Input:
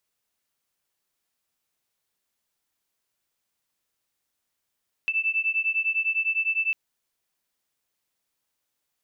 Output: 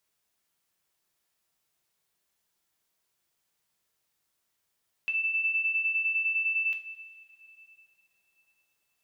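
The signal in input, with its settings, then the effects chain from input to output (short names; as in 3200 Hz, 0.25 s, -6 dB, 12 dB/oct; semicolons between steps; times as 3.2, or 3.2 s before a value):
beating tones 2640 Hz, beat 9.9 Hz, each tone -25.5 dBFS 1.65 s
limiter -25 dBFS; two-slope reverb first 0.35 s, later 3.3 s, from -16 dB, DRR 3.5 dB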